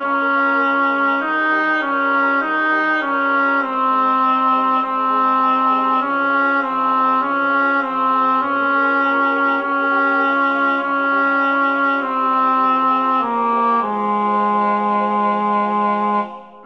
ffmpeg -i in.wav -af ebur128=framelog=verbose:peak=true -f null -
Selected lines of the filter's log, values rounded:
Integrated loudness:
  I:         -16.3 LUFS
  Threshold: -26.3 LUFS
Loudness range:
  LRA:         0.8 LU
  Threshold: -36.2 LUFS
  LRA low:   -16.6 LUFS
  LRA high:  -15.9 LUFS
True peak:
  Peak:       -5.8 dBFS